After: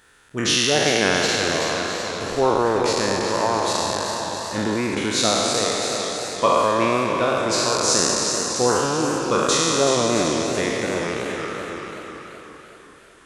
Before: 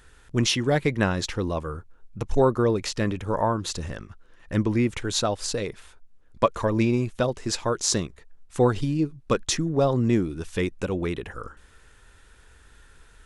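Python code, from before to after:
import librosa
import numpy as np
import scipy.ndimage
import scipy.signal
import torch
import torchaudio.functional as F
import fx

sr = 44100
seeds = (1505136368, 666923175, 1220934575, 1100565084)

p1 = fx.spec_trails(x, sr, decay_s=2.94)
p2 = fx.highpass(p1, sr, hz=310.0, slope=6)
p3 = p2 + fx.echo_single(p2, sr, ms=665, db=-11.0, dry=0)
y = fx.echo_warbled(p3, sr, ms=381, feedback_pct=50, rate_hz=2.8, cents=102, wet_db=-8.0)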